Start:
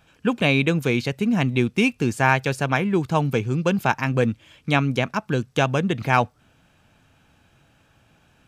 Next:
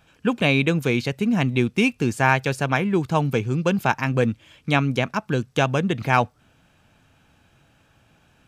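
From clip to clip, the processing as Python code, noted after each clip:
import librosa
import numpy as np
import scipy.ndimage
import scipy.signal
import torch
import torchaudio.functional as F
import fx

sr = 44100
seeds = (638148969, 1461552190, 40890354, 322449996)

y = x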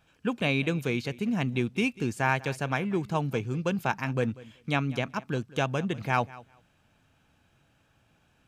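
y = fx.echo_feedback(x, sr, ms=192, feedback_pct=16, wet_db=-20.0)
y = y * 10.0 ** (-7.5 / 20.0)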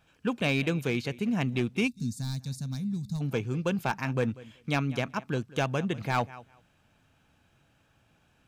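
y = np.clip(10.0 ** (19.5 / 20.0) * x, -1.0, 1.0) / 10.0 ** (19.5 / 20.0)
y = fx.spec_box(y, sr, start_s=1.88, length_s=1.33, low_hz=270.0, high_hz=3500.0, gain_db=-23)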